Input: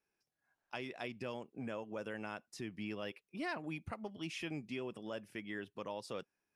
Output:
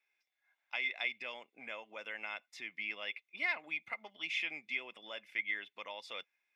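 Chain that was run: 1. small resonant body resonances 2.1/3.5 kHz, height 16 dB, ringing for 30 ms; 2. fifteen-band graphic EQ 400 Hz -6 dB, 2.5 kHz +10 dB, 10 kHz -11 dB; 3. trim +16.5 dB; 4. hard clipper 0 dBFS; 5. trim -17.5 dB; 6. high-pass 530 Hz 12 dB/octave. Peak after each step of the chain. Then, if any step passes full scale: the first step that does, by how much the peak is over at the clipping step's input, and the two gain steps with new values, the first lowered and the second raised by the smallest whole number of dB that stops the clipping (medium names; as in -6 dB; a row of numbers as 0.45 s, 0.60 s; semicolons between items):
-24.5 dBFS, -20.0 dBFS, -3.5 dBFS, -3.5 dBFS, -21.0 dBFS, -21.0 dBFS; nothing clips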